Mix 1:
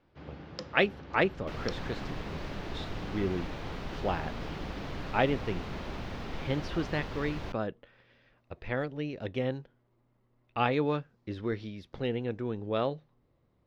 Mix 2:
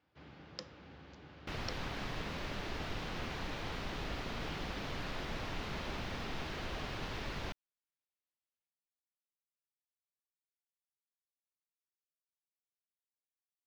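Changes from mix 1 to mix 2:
speech: muted; first sound -5.5 dB; master: add tilt shelf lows -3.5 dB, about 1.2 kHz

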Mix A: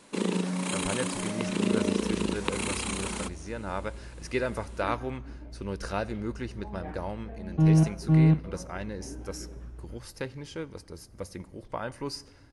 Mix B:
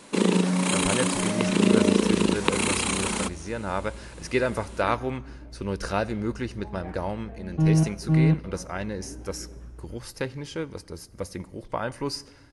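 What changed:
speech +5.0 dB; first sound +7.0 dB

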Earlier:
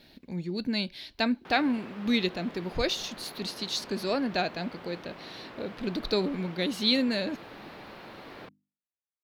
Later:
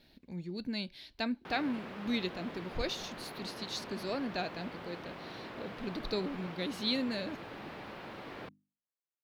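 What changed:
speech -8.0 dB; master: add bass shelf 90 Hz +6 dB

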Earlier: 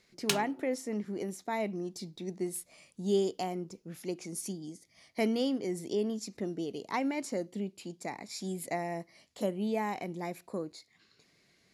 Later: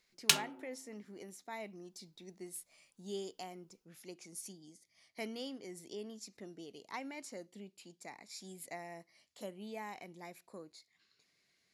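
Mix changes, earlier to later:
speech -11.0 dB; master: add tilt shelf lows -4.5 dB, about 810 Hz

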